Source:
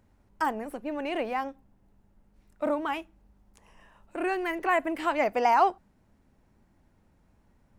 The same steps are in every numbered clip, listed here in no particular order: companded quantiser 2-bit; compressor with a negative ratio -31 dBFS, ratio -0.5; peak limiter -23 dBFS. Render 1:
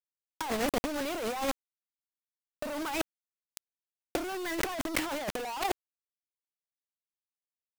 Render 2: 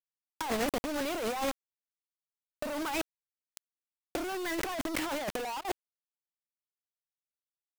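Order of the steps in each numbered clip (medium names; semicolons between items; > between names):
companded quantiser > peak limiter > compressor with a negative ratio; companded quantiser > compressor with a negative ratio > peak limiter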